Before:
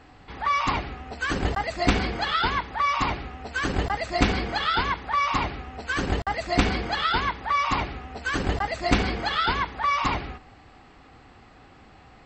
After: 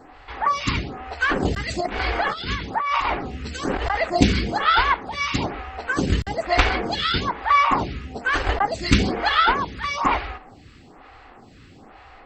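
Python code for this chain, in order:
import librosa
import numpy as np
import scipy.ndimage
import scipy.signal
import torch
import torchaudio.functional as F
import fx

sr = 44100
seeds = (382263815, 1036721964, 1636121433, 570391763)

y = fx.over_compress(x, sr, threshold_db=-28.0, ratio=-1.0, at=(1.68, 4.1))
y = fx.stagger_phaser(y, sr, hz=1.1)
y = y * librosa.db_to_amplitude(7.5)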